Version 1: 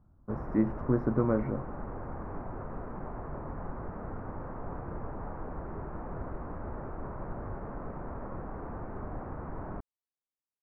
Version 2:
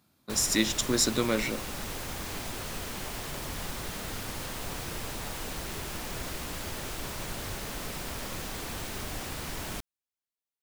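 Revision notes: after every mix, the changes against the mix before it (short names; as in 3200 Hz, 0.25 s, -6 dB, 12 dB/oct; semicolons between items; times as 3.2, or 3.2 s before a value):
speech: add HPF 190 Hz 12 dB/oct; master: remove inverse Chebyshev low-pass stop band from 3200 Hz, stop band 50 dB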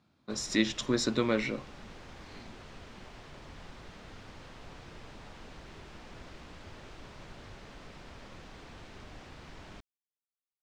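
background -10.5 dB; master: add air absorption 140 m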